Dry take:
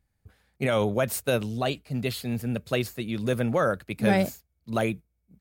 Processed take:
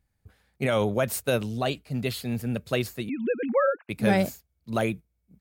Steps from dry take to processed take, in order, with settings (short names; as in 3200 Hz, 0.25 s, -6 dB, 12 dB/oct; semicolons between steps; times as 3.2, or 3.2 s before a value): 3.09–3.89 sine-wave speech